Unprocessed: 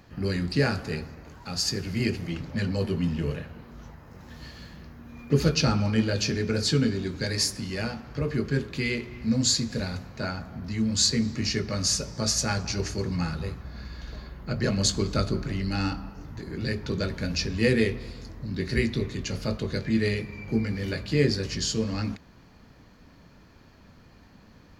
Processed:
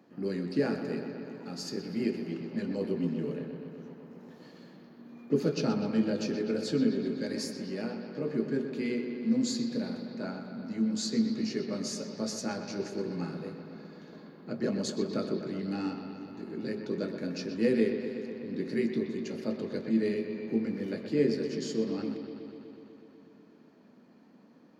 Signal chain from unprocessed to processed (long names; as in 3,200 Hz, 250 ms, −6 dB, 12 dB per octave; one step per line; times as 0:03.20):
high-pass filter 220 Hz 24 dB per octave
tilt shelving filter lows +8 dB, about 710 Hz
on a send: bucket-brigade delay 124 ms, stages 4,096, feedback 78%, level −9.5 dB
on the sum: level −6 dB